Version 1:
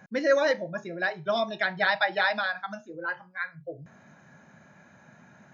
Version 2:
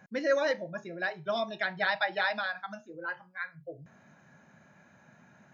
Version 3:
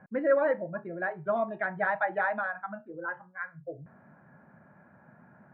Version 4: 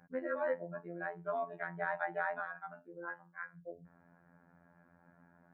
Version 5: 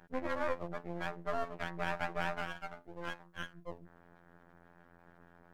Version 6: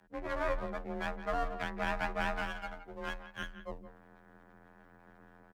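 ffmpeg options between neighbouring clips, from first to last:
ffmpeg -i in.wav -af "equalizer=frequency=2700:width=6.1:gain=2.5,volume=-4.5dB" out.wav
ffmpeg -i in.wav -af "lowpass=frequency=1600:width=0.5412,lowpass=frequency=1600:width=1.3066,volume=3dB" out.wav
ffmpeg -i in.wav -af "afftfilt=real='hypot(re,im)*cos(PI*b)':imag='0':win_size=2048:overlap=0.75,volume=-5dB" out.wav
ffmpeg -i in.wav -filter_complex "[0:a]asplit=2[link_01][link_02];[link_02]alimiter=level_in=5dB:limit=-24dB:level=0:latency=1:release=135,volume=-5dB,volume=-1dB[link_03];[link_01][link_03]amix=inputs=2:normalize=0,aeval=exprs='max(val(0),0)':channel_layout=same" out.wav
ffmpeg -i in.wav -filter_complex "[0:a]asplit=2[link_01][link_02];[link_02]adelay=170,highpass=300,lowpass=3400,asoftclip=type=hard:threshold=-26.5dB,volume=-12dB[link_03];[link_01][link_03]amix=inputs=2:normalize=0,dynaudnorm=framelen=120:gausssize=5:maxgain=7dB,afreqshift=28,volume=-5dB" out.wav

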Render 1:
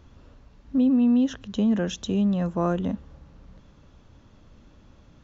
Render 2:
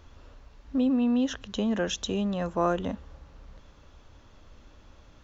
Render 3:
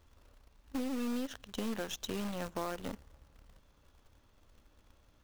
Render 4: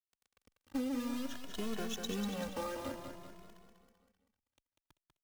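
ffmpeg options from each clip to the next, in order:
ffmpeg -i in.wav -af "equalizer=frequency=170:width_type=o:width=1.9:gain=-10.5,volume=3dB" out.wav
ffmpeg -i in.wav -af "acrusher=bits=3:mode=log:mix=0:aa=0.000001,acompressor=threshold=-26dB:ratio=6,aeval=exprs='0.126*(cos(1*acos(clip(val(0)/0.126,-1,1)))-cos(1*PI/2))+0.00794*(cos(7*acos(clip(val(0)/0.126,-1,1)))-cos(7*PI/2))+0.01*(cos(8*acos(clip(val(0)/0.126,-1,1)))-cos(8*PI/2))':channel_layout=same,volume=-7dB" out.wav
ffmpeg -i in.wav -filter_complex "[0:a]acrusher=bits=8:mix=0:aa=0.000001,asplit=2[link_01][link_02];[link_02]aecho=0:1:194|388|582|776|970|1164|1358:0.501|0.266|0.141|0.0746|0.0395|0.021|0.0111[link_03];[link_01][link_03]amix=inputs=2:normalize=0,asplit=2[link_04][link_05];[link_05]adelay=2.3,afreqshift=0.53[link_06];[link_04][link_06]amix=inputs=2:normalize=1,volume=1dB" out.wav

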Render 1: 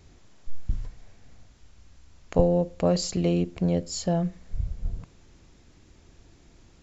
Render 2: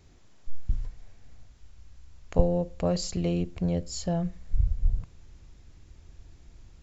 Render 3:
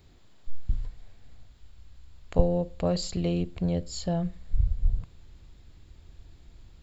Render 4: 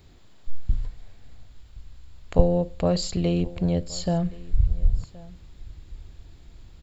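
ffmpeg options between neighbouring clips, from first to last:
ffmpeg -i in.wav -af "asubboost=boost=3:cutoff=130,volume=-3.5dB" out.wav
ffmpeg -i in.wav -af "aexciter=amount=1.2:drive=3.8:freq=3300" out.wav
ffmpeg -i in.wav -af "aecho=1:1:1071:0.0841,volume=4dB" out.wav

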